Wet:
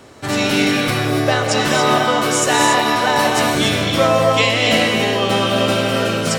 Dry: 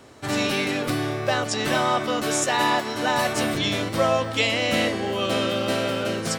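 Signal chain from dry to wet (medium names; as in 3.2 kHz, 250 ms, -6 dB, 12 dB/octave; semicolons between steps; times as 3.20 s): gated-style reverb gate 310 ms rising, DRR 1.5 dB; trim +5.5 dB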